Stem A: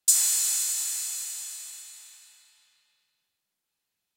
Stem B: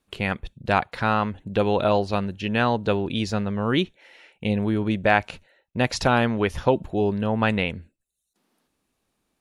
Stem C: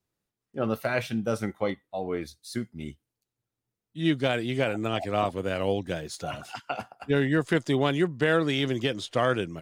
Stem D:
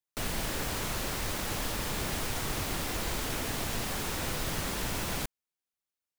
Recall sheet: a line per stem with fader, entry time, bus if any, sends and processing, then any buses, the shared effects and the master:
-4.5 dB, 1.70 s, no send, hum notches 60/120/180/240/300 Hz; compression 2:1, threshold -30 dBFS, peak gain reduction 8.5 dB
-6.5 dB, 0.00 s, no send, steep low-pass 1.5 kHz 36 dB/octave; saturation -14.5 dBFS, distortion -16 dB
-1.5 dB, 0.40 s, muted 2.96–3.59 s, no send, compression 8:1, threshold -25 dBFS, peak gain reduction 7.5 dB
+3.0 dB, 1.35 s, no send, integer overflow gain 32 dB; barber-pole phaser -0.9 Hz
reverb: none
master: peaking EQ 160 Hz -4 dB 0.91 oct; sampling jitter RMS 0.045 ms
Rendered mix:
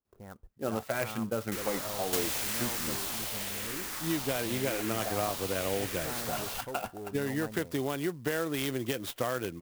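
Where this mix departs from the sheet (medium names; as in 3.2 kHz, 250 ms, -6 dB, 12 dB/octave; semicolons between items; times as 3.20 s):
stem A: entry 1.70 s -> 2.05 s; stem B -6.5 dB -> -18.0 dB; stem C: entry 0.40 s -> 0.05 s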